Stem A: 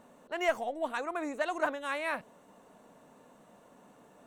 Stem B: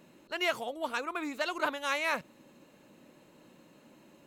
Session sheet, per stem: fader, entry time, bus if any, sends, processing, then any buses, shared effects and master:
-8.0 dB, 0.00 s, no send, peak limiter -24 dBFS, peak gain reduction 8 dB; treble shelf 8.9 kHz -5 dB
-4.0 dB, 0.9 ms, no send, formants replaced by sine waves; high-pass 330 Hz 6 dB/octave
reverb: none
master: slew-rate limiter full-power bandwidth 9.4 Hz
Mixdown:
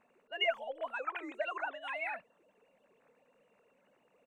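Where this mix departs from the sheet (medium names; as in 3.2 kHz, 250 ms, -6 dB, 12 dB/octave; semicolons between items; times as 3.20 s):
stem A -8.0 dB -> -17.0 dB; master: missing slew-rate limiter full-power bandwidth 9.4 Hz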